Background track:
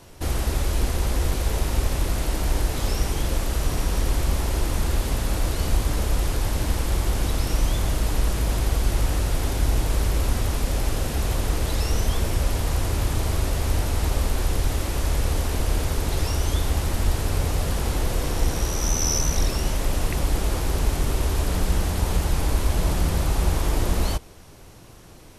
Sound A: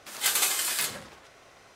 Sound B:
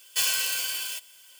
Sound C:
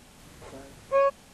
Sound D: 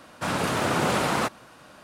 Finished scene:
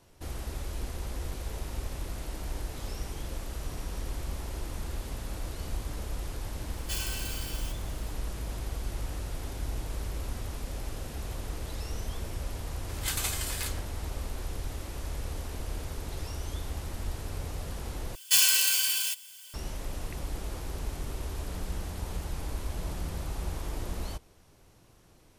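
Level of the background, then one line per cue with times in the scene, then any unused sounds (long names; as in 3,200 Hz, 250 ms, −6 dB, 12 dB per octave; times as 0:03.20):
background track −13 dB
0:06.73: mix in B −11 dB
0:12.82: mix in A −7.5 dB
0:18.15: overwrite with B −4 dB + high-shelf EQ 2,000 Hz +8.5 dB
not used: C, D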